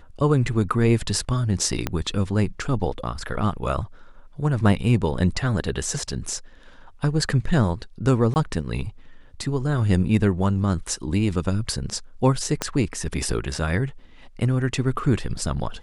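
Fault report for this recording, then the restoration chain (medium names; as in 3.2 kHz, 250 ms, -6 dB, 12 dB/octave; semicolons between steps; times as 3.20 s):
1.87 s: pop -9 dBFS
8.34–8.36 s: dropout 19 ms
12.62 s: pop -8 dBFS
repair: de-click; interpolate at 8.34 s, 19 ms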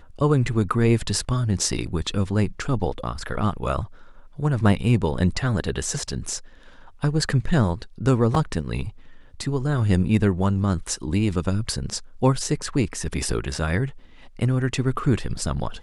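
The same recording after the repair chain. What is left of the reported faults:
1.87 s: pop
12.62 s: pop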